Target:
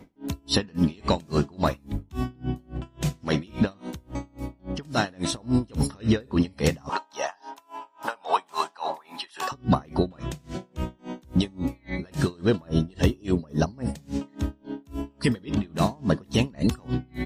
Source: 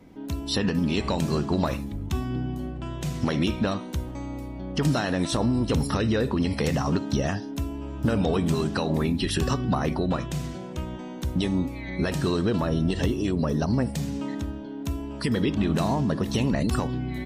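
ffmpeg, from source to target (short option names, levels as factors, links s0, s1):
-filter_complex "[0:a]asettb=1/sr,asplit=3[s0][s1][s2];[s0]atrim=end=6.894[s3];[s1]atrim=start=6.89:end=9.52,asetpts=PTS-STARTPTS,afade=t=in:d=0.004:c=qsin,afade=t=out:st=2.626:d=0.004:c=qsin,highpass=f=900:t=q:w=4[s4];[s2]atrim=start=9.516[s5];[s3][s4]acrossfade=d=0.004:c1=hsin:c2=qsin[s6];[s6][s5]acrossfade=d=0.004:c1=qsin:c2=hsin,aeval=exprs='val(0)*pow(10,-31*(0.5-0.5*cos(2*PI*3.6*n/s))/20)':c=same,volume=1.88"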